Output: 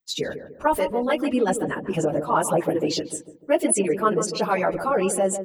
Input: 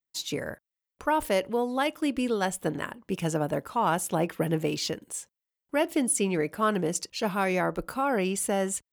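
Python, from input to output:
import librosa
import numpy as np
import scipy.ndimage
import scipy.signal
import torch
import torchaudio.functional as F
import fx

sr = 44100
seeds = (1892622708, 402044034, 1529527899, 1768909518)

y = fx.envelope_sharpen(x, sr, power=1.5)
y = fx.stretch_vocoder_free(y, sr, factor=0.61)
y = fx.echo_filtered(y, sr, ms=148, feedback_pct=47, hz=860.0, wet_db=-8)
y = y * librosa.db_to_amplitude(8.5)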